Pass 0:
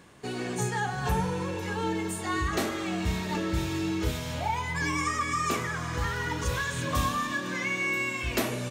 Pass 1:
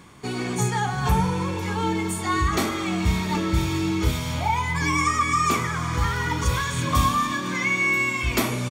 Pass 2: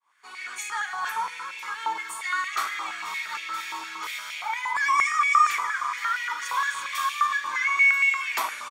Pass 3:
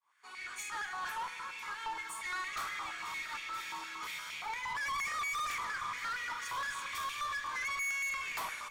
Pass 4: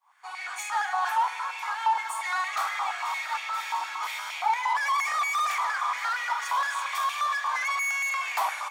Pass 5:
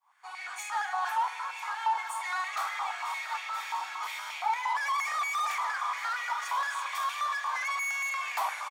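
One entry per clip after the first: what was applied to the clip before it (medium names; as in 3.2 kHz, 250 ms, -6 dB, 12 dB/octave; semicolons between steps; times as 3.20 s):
comb 0.9 ms, depth 39%; trim +5 dB
fade-in on the opening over 0.59 s; step-sequenced high-pass 8.6 Hz 980–2300 Hz; trim -6 dB
valve stage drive 28 dB, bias 0.25; on a send at -15 dB: reverberation RT60 4.8 s, pre-delay 83 ms; on the sum: trim -6 dB
resonant high-pass 770 Hz, resonance Q 4.8; trim +6 dB
delay 977 ms -15 dB; trim -4 dB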